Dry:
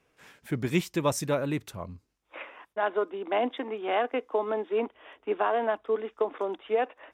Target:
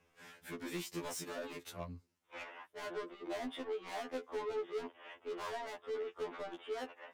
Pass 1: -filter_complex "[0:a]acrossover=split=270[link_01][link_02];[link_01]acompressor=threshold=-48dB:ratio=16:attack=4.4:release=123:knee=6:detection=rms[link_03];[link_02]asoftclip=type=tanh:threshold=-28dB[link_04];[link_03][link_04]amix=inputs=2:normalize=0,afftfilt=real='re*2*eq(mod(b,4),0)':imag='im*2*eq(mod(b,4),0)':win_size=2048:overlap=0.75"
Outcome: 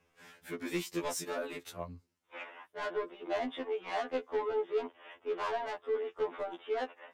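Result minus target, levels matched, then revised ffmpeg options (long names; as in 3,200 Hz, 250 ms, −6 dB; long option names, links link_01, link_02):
soft clipping: distortion −6 dB
-filter_complex "[0:a]acrossover=split=270[link_01][link_02];[link_01]acompressor=threshold=-48dB:ratio=16:attack=4.4:release=123:knee=6:detection=rms[link_03];[link_02]asoftclip=type=tanh:threshold=-38dB[link_04];[link_03][link_04]amix=inputs=2:normalize=0,afftfilt=real='re*2*eq(mod(b,4),0)':imag='im*2*eq(mod(b,4),0)':win_size=2048:overlap=0.75"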